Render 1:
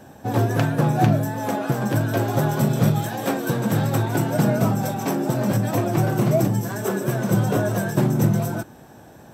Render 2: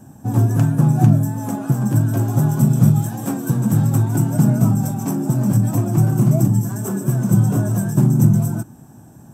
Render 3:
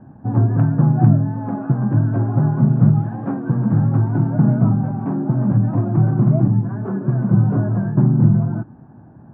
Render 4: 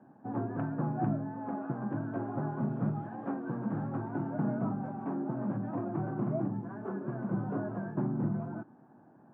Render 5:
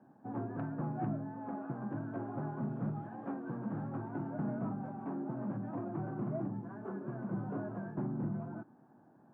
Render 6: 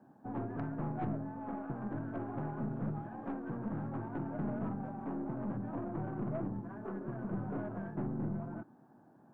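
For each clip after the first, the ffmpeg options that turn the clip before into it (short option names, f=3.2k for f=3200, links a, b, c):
-af "equalizer=f=125:t=o:w=1:g=7,equalizer=f=250:t=o:w=1:g=5,equalizer=f=500:t=o:w=1:g=-10,equalizer=f=2k:t=o:w=1:g=-9,equalizer=f=4k:t=o:w=1:g=-11,equalizer=f=8k:t=o:w=1:g=7"
-af "lowpass=f=1.7k:w=0.5412,lowpass=f=1.7k:w=1.3066"
-af "highpass=290,volume=-8.5dB"
-af "asoftclip=type=tanh:threshold=-22dB,volume=-4dB"
-af "aeval=exprs='(tanh(39.8*val(0)+0.45)-tanh(0.45))/39.8':c=same,volume=2.5dB"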